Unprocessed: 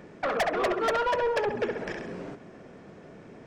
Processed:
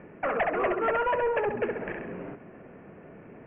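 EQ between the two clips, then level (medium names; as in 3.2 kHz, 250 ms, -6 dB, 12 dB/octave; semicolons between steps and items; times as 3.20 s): steep low-pass 2.8 kHz 72 dB/octave; 0.0 dB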